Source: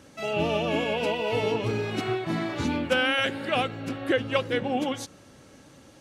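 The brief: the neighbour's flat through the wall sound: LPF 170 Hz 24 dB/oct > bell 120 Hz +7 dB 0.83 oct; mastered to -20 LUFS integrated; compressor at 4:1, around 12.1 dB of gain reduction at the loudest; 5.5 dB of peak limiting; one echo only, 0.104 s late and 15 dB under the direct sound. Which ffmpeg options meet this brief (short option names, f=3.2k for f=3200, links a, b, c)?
-af "acompressor=threshold=-34dB:ratio=4,alimiter=level_in=3.5dB:limit=-24dB:level=0:latency=1,volume=-3.5dB,lowpass=f=170:w=0.5412,lowpass=f=170:w=1.3066,equalizer=f=120:t=o:w=0.83:g=7,aecho=1:1:104:0.178,volume=24.5dB"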